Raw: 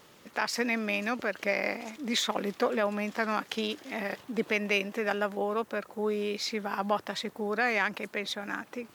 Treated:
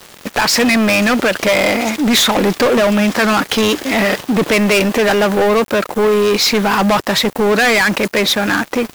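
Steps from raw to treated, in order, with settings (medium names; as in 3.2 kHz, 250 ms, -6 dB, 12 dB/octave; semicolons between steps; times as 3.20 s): waveshaping leveller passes 5; bit crusher 7-bit; trim +6.5 dB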